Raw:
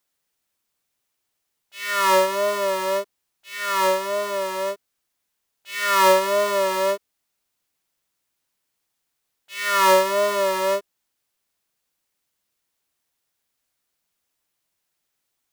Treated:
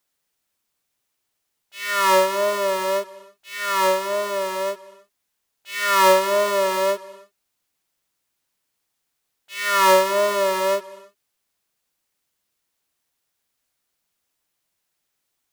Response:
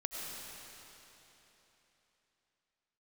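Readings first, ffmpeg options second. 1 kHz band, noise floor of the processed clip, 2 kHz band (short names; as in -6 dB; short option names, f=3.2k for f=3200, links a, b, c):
+1.0 dB, -77 dBFS, +1.0 dB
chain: -filter_complex "[0:a]asplit=2[a][b];[1:a]atrim=start_sample=2205,afade=t=out:st=0.26:d=0.01,atrim=end_sample=11907,asetrate=27783,aresample=44100[c];[b][c]afir=irnorm=-1:irlink=0,volume=-19dB[d];[a][d]amix=inputs=2:normalize=0"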